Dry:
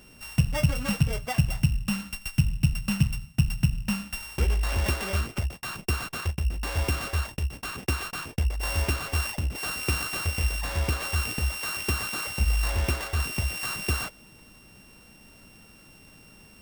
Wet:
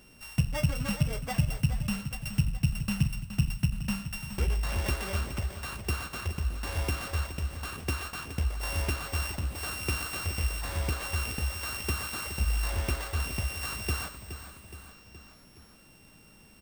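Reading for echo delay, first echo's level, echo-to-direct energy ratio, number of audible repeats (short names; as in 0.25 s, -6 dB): 0.42 s, -11.0 dB, -9.5 dB, 4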